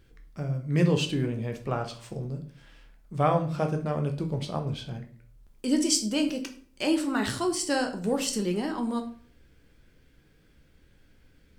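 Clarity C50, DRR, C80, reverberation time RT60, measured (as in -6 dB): 11.0 dB, 4.0 dB, 15.0 dB, 0.50 s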